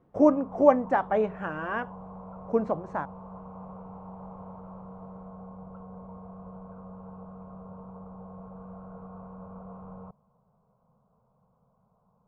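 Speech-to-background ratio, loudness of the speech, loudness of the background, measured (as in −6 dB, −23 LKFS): 18.0 dB, −26.5 LKFS, −44.5 LKFS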